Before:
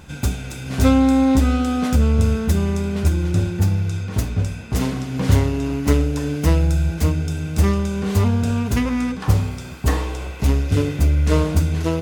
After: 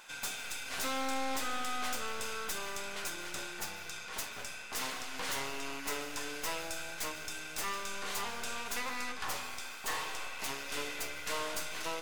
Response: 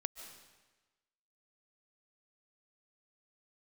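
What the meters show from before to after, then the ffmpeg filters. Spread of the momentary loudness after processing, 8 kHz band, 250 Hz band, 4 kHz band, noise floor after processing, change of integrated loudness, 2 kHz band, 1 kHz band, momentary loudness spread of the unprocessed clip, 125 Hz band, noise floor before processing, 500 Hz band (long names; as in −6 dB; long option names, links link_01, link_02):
5 LU, −5.0 dB, −28.5 dB, −4.5 dB, −45 dBFS, −17.5 dB, −5.0 dB, −8.5 dB, 7 LU, −39.5 dB, −32 dBFS, −17.5 dB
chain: -filter_complex "[0:a]highpass=1000,aeval=exprs='(tanh(44.7*val(0)+0.65)-tanh(0.65))/44.7':channel_layout=same,asplit=2[link_01][link_02];[1:a]atrim=start_sample=2205,afade=type=out:start_time=0.44:duration=0.01,atrim=end_sample=19845[link_03];[link_02][link_03]afir=irnorm=-1:irlink=0,volume=2dB[link_04];[link_01][link_04]amix=inputs=2:normalize=0,volume=-5.5dB"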